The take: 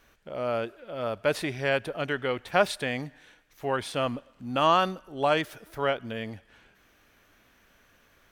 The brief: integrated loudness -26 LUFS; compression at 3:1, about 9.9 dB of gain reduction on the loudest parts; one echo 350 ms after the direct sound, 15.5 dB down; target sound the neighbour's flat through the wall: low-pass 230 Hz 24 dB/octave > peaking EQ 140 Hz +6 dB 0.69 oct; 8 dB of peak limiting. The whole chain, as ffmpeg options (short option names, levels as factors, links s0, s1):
-af "acompressor=threshold=0.0316:ratio=3,alimiter=limit=0.0708:level=0:latency=1,lowpass=f=230:w=0.5412,lowpass=f=230:w=1.3066,equalizer=f=140:t=o:w=0.69:g=6,aecho=1:1:350:0.168,volume=6.68"